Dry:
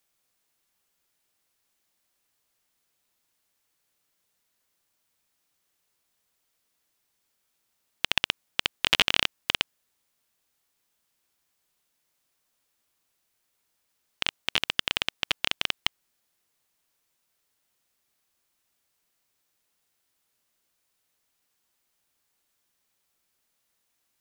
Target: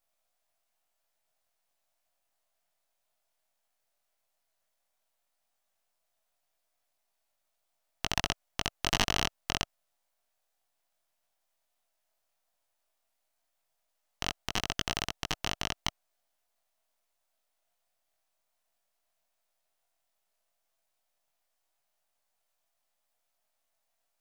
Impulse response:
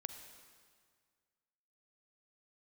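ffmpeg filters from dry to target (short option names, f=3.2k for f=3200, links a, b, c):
-af "highpass=f=660:t=q:w=4.8,aeval=exprs='max(val(0),0)':c=same,flanger=delay=19:depth=3.4:speed=0.13"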